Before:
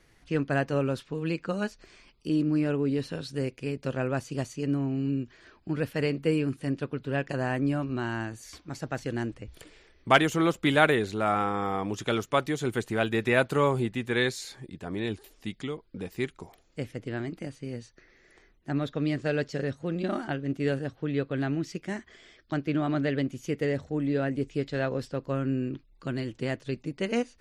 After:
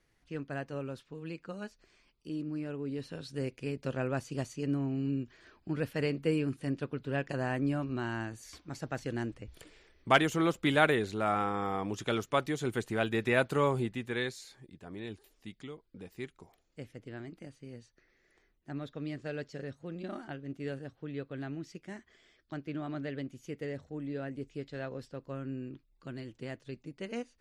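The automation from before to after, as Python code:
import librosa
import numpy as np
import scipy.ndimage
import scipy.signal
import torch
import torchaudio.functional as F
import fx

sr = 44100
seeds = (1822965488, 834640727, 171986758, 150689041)

y = fx.gain(x, sr, db=fx.line((2.72, -11.5), (3.52, -4.0), (13.79, -4.0), (14.47, -10.5)))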